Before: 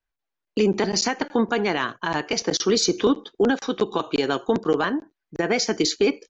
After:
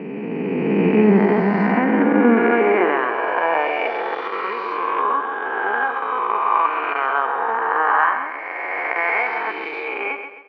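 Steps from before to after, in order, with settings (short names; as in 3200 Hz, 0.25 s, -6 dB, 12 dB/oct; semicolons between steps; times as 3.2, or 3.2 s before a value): spectral swells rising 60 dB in 2.01 s; elliptic low-pass 2400 Hz, stop band 80 dB; tempo 0.6×; high-pass sweep 180 Hz -> 980 Hz, 1.69–4.34; on a send: feedback echo 0.132 s, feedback 39%, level -8.5 dB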